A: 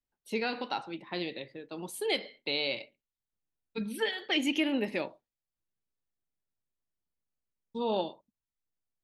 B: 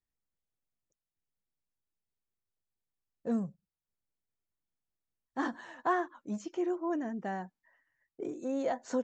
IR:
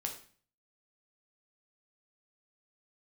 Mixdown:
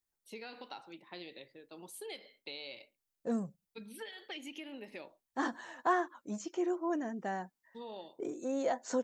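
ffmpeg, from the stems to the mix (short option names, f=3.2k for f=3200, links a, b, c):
-filter_complex "[0:a]acompressor=threshold=-32dB:ratio=6,volume=-9.5dB[a];[1:a]highshelf=f=7.8k:g=5,volume=0dB[b];[a][b]amix=inputs=2:normalize=0,bass=f=250:g=-5,treble=f=4k:g=3"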